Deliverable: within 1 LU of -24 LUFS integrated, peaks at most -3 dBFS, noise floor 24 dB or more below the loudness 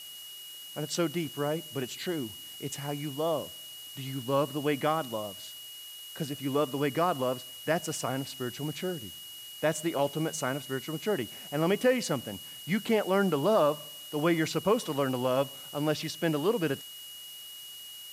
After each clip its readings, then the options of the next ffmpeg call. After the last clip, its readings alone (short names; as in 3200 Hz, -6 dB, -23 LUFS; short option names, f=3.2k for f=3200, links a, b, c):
steady tone 2900 Hz; tone level -44 dBFS; noise floor -45 dBFS; noise floor target -55 dBFS; loudness -31.0 LUFS; peak -12.5 dBFS; loudness target -24.0 LUFS
-> -af "bandreject=f=2.9k:w=30"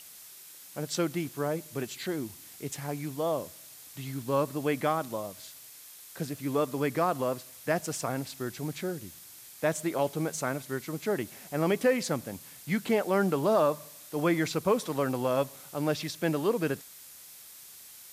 steady tone none; noise floor -50 dBFS; noise floor target -55 dBFS
-> -af "afftdn=nr=6:nf=-50"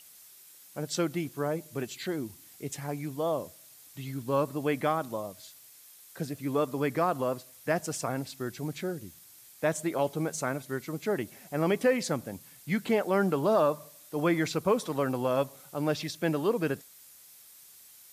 noise floor -54 dBFS; noise floor target -55 dBFS
-> -af "afftdn=nr=6:nf=-54"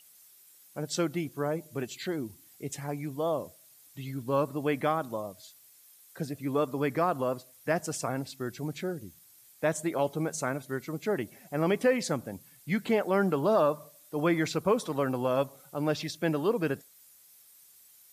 noise floor -58 dBFS; loudness -31.0 LUFS; peak -13.0 dBFS; loudness target -24.0 LUFS
-> -af "volume=7dB"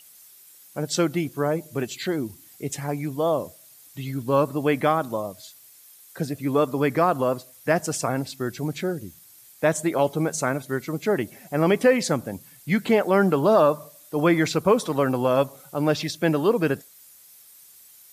loudness -24.0 LUFS; peak -6.0 dBFS; noise floor -51 dBFS